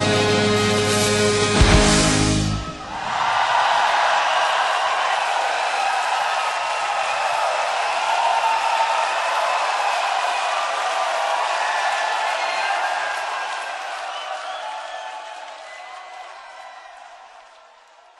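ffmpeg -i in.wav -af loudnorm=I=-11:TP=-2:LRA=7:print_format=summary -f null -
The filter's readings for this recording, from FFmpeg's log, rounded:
Input Integrated:    -19.8 LUFS
Input True Peak:      -4.2 dBTP
Input LRA:            20.7 LU
Input Threshold:     -31.2 LUFS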